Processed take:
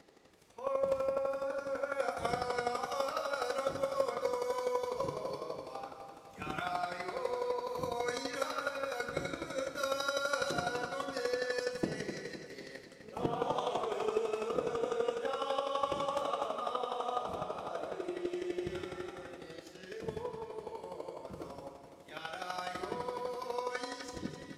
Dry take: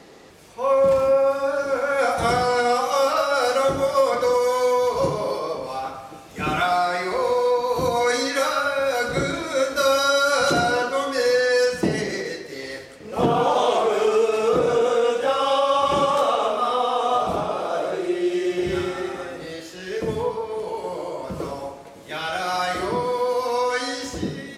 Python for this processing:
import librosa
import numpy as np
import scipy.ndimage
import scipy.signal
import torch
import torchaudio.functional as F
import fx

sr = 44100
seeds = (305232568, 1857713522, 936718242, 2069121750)

p1 = fx.chopper(x, sr, hz=12.0, depth_pct=65, duty_pct=10)
p2 = p1 + fx.echo_feedback(p1, sr, ms=258, feedback_pct=54, wet_db=-10.0, dry=0)
y = F.gain(torch.from_numpy(p2), -9.0).numpy()